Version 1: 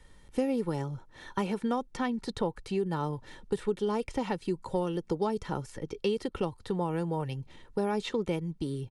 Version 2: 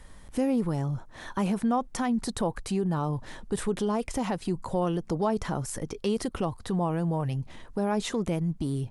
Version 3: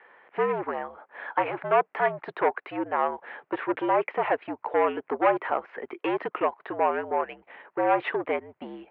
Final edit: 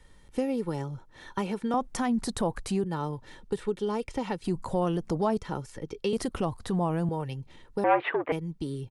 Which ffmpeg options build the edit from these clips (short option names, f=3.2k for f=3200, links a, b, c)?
-filter_complex "[1:a]asplit=3[a][b][c];[0:a]asplit=5[d][e][f][g][h];[d]atrim=end=1.742[i];[a]atrim=start=1.738:end=2.842[j];[e]atrim=start=2.838:end=4.442[k];[b]atrim=start=4.438:end=5.382[l];[f]atrim=start=5.378:end=6.132[m];[c]atrim=start=6.128:end=7.092[n];[g]atrim=start=7.088:end=7.842[o];[2:a]atrim=start=7.838:end=8.322[p];[h]atrim=start=8.318[q];[i][j]acrossfade=d=0.004:c1=hsin:c2=hsin[r];[r][k]acrossfade=d=0.004:c1=hsin:c2=hsin[s];[s][l]acrossfade=d=0.004:c1=hsin:c2=hsin[t];[t][m]acrossfade=d=0.004:c1=hsin:c2=hsin[u];[u][n]acrossfade=d=0.004:c1=hsin:c2=hsin[v];[v][o]acrossfade=d=0.004:c1=hsin:c2=hsin[w];[w][p]acrossfade=d=0.004:c1=hsin:c2=hsin[x];[x][q]acrossfade=d=0.004:c1=hsin:c2=hsin"